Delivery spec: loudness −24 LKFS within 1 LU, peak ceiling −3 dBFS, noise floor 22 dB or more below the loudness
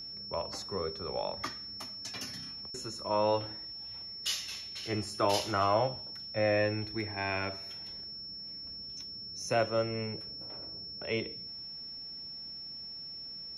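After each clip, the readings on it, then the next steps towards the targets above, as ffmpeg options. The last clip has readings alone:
interfering tone 5,400 Hz; level of the tone −41 dBFS; integrated loudness −34.5 LKFS; sample peak −15.5 dBFS; target loudness −24.0 LKFS
→ -af "bandreject=frequency=5400:width=30"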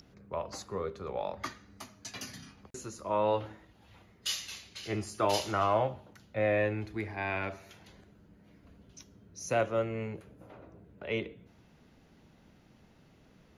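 interfering tone none found; integrated loudness −34.0 LKFS; sample peak −16.0 dBFS; target loudness −24.0 LKFS
→ -af "volume=10dB"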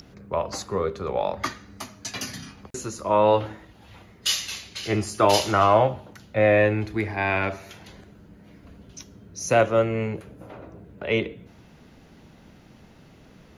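integrated loudness −24.0 LKFS; sample peak −6.0 dBFS; background noise floor −52 dBFS

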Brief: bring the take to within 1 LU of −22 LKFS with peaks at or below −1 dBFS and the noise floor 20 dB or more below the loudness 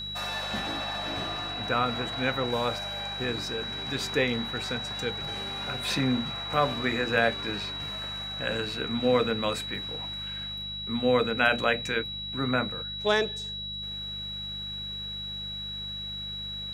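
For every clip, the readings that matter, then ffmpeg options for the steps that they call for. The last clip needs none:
mains hum 50 Hz; hum harmonics up to 200 Hz; level of the hum −42 dBFS; interfering tone 3,900 Hz; level of the tone −34 dBFS; integrated loudness −29.0 LKFS; sample peak −8.5 dBFS; target loudness −22.0 LKFS
→ -af "bandreject=frequency=50:width_type=h:width=4,bandreject=frequency=100:width_type=h:width=4,bandreject=frequency=150:width_type=h:width=4,bandreject=frequency=200:width_type=h:width=4"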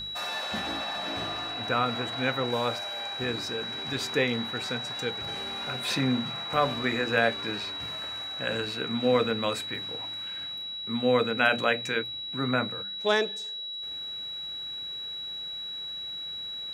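mains hum none found; interfering tone 3,900 Hz; level of the tone −34 dBFS
→ -af "bandreject=frequency=3900:width=30"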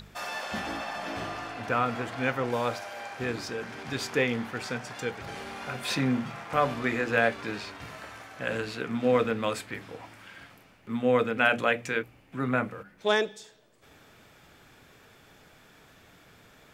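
interfering tone none found; integrated loudness −29.5 LKFS; sample peak −9.0 dBFS; target loudness −22.0 LKFS
→ -af "volume=7.5dB"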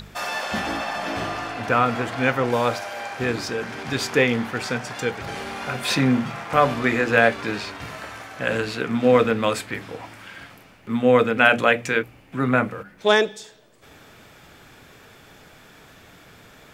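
integrated loudness −22.0 LKFS; sample peak −1.5 dBFS; background noise floor −50 dBFS

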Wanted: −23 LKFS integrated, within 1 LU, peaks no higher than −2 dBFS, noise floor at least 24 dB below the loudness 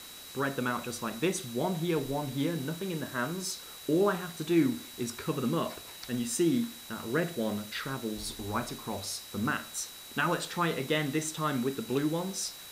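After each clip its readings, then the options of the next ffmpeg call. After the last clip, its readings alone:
interfering tone 3,900 Hz; level of the tone −49 dBFS; background noise floor −47 dBFS; target noise floor −56 dBFS; integrated loudness −32.0 LKFS; sample peak −15.0 dBFS; target loudness −23.0 LKFS
→ -af "bandreject=frequency=3900:width=30"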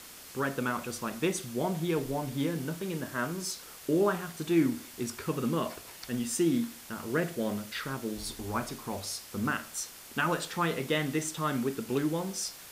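interfering tone none found; background noise floor −49 dBFS; target noise floor −56 dBFS
→ -af "afftdn=noise_reduction=7:noise_floor=-49"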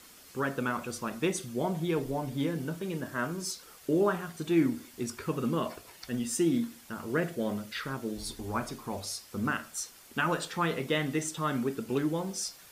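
background noise floor −54 dBFS; target noise floor −57 dBFS
→ -af "afftdn=noise_reduction=6:noise_floor=-54"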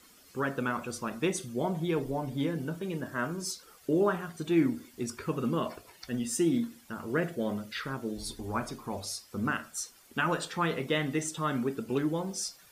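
background noise floor −58 dBFS; integrated loudness −32.5 LKFS; sample peak −15.0 dBFS; target loudness −23.0 LKFS
→ -af "volume=9.5dB"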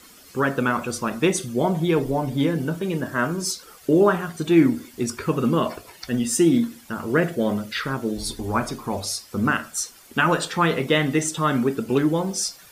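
integrated loudness −23.0 LKFS; sample peak −5.5 dBFS; background noise floor −48 dBFS

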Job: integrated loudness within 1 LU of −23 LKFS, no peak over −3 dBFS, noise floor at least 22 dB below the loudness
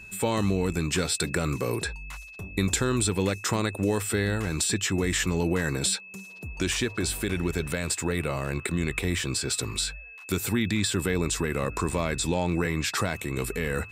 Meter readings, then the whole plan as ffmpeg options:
interfering tone 2,600 Hz; level of the tone −43 dBFS; integrated loudness −27.5 LKFS; sample peak −11.5 dBFS; target loudness −23.0 LKFS
→ -af "bandreject=frequency=2600:width=30"
-af "volume=4.5dB"

